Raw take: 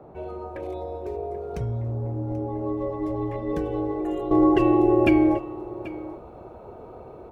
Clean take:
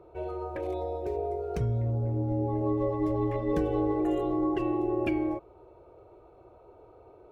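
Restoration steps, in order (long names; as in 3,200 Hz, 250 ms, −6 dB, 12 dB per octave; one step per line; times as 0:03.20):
noise reduction from a noise print 12 dB
echo removal 785 ms −17 dB
level 0 dB, from 0:04.31 −10 dB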